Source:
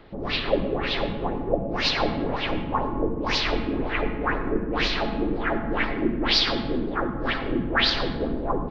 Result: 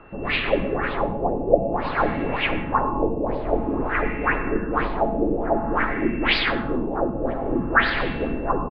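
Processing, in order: whistle 2.7 kHz -46 dBFS; LFO low-pass sine 0.52 Hz 610–2400 Hz; resampled via 11.025 kHz; trim +1 dB

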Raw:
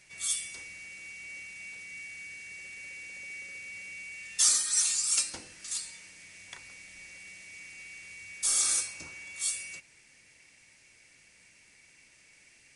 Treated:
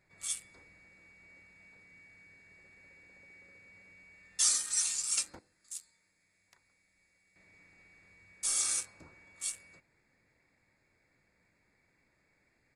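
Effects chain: local Wiener filter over 15 samples; 5.39–7.36 s: pre-emphasis filter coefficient 0.8; resampled via 32 kHz; trim -3.5 dB

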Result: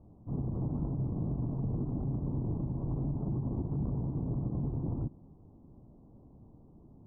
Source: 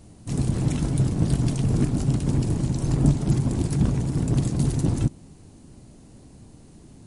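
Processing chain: steep low-pass 1.1 kHz 48 dB/octave; peak limiter -18 dBFS, peak gain reduction 10.5 dB; trim -8 dB

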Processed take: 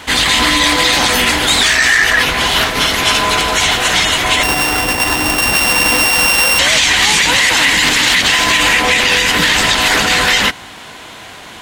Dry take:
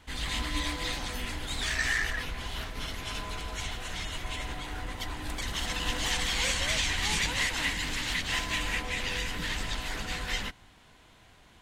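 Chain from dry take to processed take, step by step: 4.43–6.59 s: sorted samples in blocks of 16 samples; high-pass 330 Hz 6 dB/octave; loudness maximiser +27.5 dB; trim -1 dB

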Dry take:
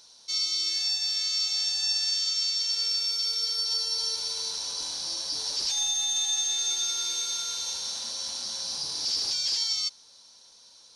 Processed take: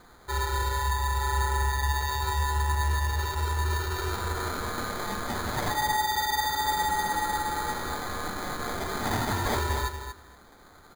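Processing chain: comb 6.3 ms, depth 31%; sample-and-hold 16×; feedback delay 235 ms, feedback 15%, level -8.5 dB

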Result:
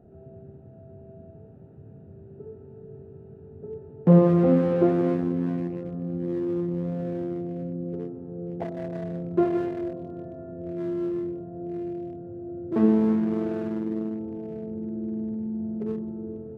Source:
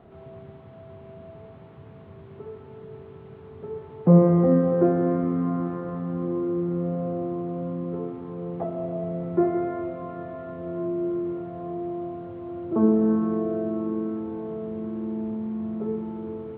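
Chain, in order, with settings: local Wiener filter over 41 samples; on a send: brick-wall FIR low-pass 1.2 kHz + reverberation RT60 2.9 s, pre-delay 38 ms, DRR 18 dB

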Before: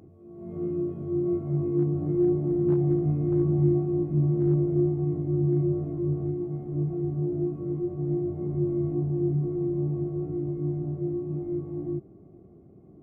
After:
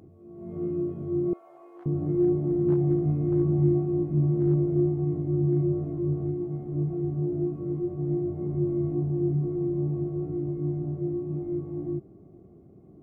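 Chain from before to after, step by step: 1.33–1.86 s: high-pass 670 Hz 24 dB/octave

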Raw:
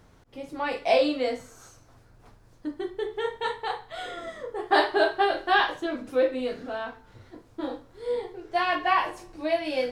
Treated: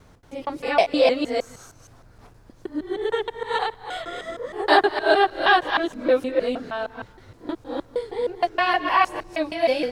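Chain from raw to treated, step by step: time reversed locally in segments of 156 ms; trim +4.5 dB

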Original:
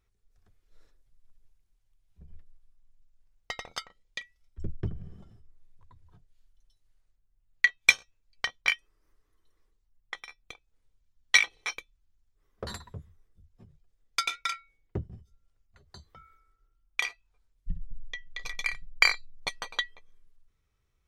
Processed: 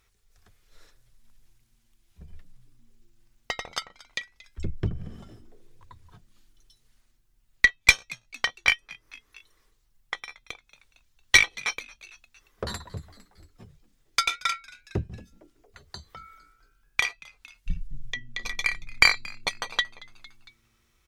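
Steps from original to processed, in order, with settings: valve stage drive 9 dB, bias 0.35; frequency-shifting echo 228 ms, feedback 45%, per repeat +110 Hz, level -23 dB; tape noise reduction on one side only encoder only; trim +6 dB

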